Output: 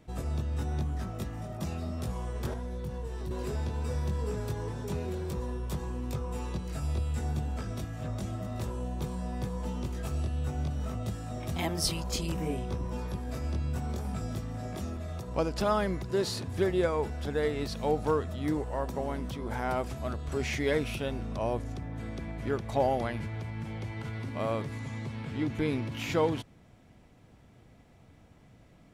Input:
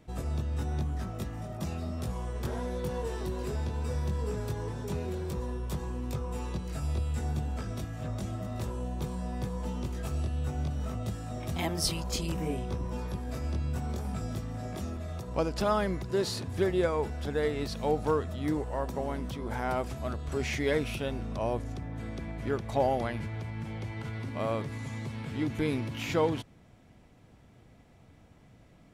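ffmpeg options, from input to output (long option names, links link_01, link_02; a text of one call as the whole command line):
ffmpeg -i in.wav -filter_complex "[0:a]asettb=1/sr,asplit=3[link_01][link_02][link_03];[link_01]atrim=end=2.534[link_04];[link_02]atrim=start=2.53:end=3.31,asetpts=PTS-STARTPTS,afade=type=in:duration=0.004:curve=qsin,afade=type=out:start_time=0.776:duration=0.004:curve=qsin,acrossover=split=180[link_05][link_06];[link_06]acompressor=threshold=-41dB:ratio=10[link_07];[link_05][link_07]amix=inputs=2:normalize=0[link_08];[link_03]atrim=start=3.306[link_09];[link_04][link_08]acrossfade=duration=0.004:curve1=hsin:curve2=qsin[link_10];[link_10][link_09]acrossfade=duration=0.004:curve1=qsin:curve2=hsin,asettb=1/sr,asplit=3[link_11][link_12][link_13];[link_11]atrim=end=24.794[link_14];[link_12]atrim=start=24.79:end=25.92,asetpts=PTS-STARTPTS,afade=type=in:duration=0.004:curve=qsin,afade=type=out:start_time=1.126:duration=0.004:curve=qsin,highshelf=frequency=8200:gain=-8.5[link_15];[link_13]atrim=start=25.916[link_16];[link_14][link_15]acrossfade=duration=0.004:curve1=hsin:curve2=qsin[link_17];[link_17][link_16]acrossfade=duration=0.004:curve1=qsin:curve2=hsin" out.wav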